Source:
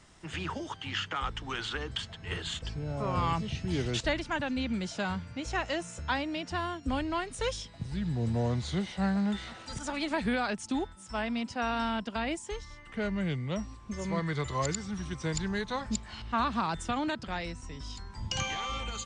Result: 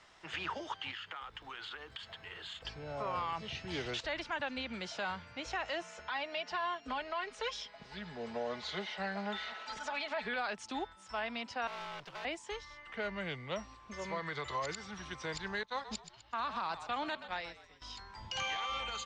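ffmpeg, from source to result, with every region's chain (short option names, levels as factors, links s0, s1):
-filter_complex "[0:a]asettb=1/sr,asplit=3[s0][s1][s2];[s0]atrim=end=0.914[s3];[s1]atrim=start=0.91:end=2.65,asetpts=PTS-STARTPTS,afade=t=in:d=0.004:c=qsin,afade=t=out:st=1.736:d=0.004:c=qsin,bandreject=f=5800:w=6.1,acompressor=threshold=0.01:ratio=20:attack=3.2:release=140:knee=1:detection=peak,acrusher=bits=6:mode=log:mix=0:aa=0.000001[s4];[s2]atrim=start=2.646[s5];[s3][s4]acrossfade=d=0.004:c1=hsin:c2=qsin[s6];[s6][s5]acrossfade=d=0.004:c1=qsin:c2=hsin,asettb=1/sr,asplit=3[s7][s8][s9];[s7]atrim=end=5.824[s10];[s8]atrim=start=5.82:end=10.36,asetpts=PTS-STARTPTS,afade=t=in:d=0.004:c=qsin,afade=t=out:st=4.536:d=0.004:c=qsin,lowpass=6800,bass=f=250:g=-8,treble=f=4000:g=-1,aecho=1:1:4.7:0.66,atrim=end_sample=200214[s11];[s9]atrim=start=10.356[s12];[s10][s11]acrossfade=d=0.004:c1=hsin:c2=qsin[s13];[s13][s12]acrossfade=d=0.004:c1=qsin:c2=hsin,asettb=1/sr,asplit=3[s14][s15][s16];[s14]atrim=end=11.674[s17];[s15]atrim=start=11.67:end=12.25,asetpts=PTS-STARTPTS,afade=t=in:d=0.004:c=qsin,afade=t=out:st=0.576:d=0.004:c=qsin,afreqshift=-55,aeval=exprs='(tanh(100*val(0)+0.5)-tanh(0.5))/100':c=same,acrusher=bits=8:mix=0:aa=0.5[s18];[s16]atrim=start=12.246[s19];[s17][s18]acrossfade=d=0.004:c1=hsin:c2=qsin[s20];[s20][s19]acrossfade=d=0.004:c1=qsin:c2=hsin,asettb=1/sr,asplit=3[s21][s22][s23];[s21]atrim=end=15.634[s24];[s22]atrim=start=15.63:end=17.82,asetpts=PTS-STARTPTS,afade=t=in:d=0.004:c=qsin,afade=t=out:st=2.186:d=0.004:c=qsin,agate=range=0.0224:threshold=0.0251:ratio=3:release=100:detection=peak,highshelf=f=4800:g=5,asplit=5[s25][s26][s27][s28][s29];[s26]adelay=126,afreqshift=-50,volume=0.168[s30];[s27]adelay=252,afreqshift=-100,volume=0.0776[s31];[s28]adelay=378,afreqshift=-150,volume=0.0355[s32];[s29]adelay=504,afreqshift=-200,volume=0.0164[s33];[s25][s30][s31][s32][s33]amix=inputs=5:normalize=0,atrim=end_sample=96579[s34];[s23]atrim=start=17.816[s35];[s24][s34]acrossfade=d=0.004:c1=hsin:c2=qsin[s36];[s36][s35]acrossfade=d=0.004:c1=qsin:c2=hsin,acrossover=split=460 5600:gain=0.178 1 0.112[s37][s38][s39];[s37][s38][s39]amix=inputs=3:normalize=0,alimiter=level_in=1.78:limit=0.0631:level=0:latency=1:release=83,volume=0.562,volume=1.12"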